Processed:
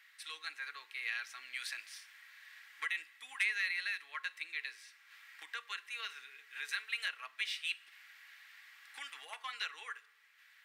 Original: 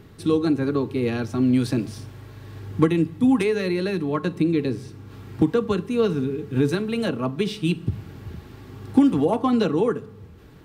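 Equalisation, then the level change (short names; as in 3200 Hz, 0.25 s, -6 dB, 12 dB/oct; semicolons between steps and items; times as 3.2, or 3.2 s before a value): ladder high-pass 1700 Hz, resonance 60%; +3.0 dB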